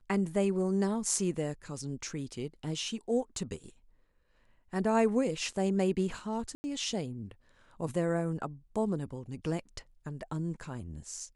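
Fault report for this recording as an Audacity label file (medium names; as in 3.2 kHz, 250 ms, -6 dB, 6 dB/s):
6.550000	6.640000	dropout 90 ms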